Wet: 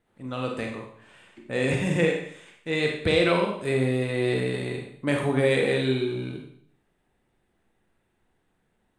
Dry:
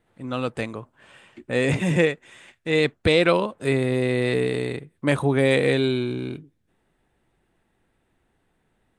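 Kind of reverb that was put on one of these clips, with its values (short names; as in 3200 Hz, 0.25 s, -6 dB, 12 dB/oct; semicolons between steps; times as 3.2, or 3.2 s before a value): Schroeder reverb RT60 0.62 s, combs from 31 ms, DRR 1 dB; gain -5 dB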